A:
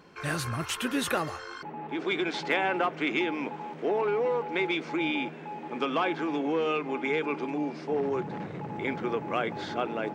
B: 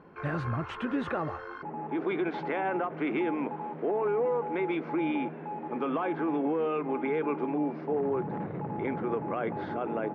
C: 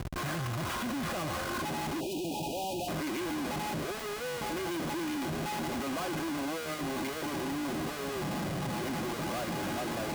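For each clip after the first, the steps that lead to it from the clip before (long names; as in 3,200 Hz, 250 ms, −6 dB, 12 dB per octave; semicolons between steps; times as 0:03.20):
low-pass filter 1,400 Hz 12 dB per octave; brickwall limiter −23.5 dBFS, peak gain reduction 7.5 dB; every ending faded ahead of time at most 270 dB per second; level +2 dB
comparator with hysteresis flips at −47.5 dBFS; time-frequency box erased 0:02.00–0:02.88, 960–2,400 Hz; notch comb filter 450 Hz; level −2 dB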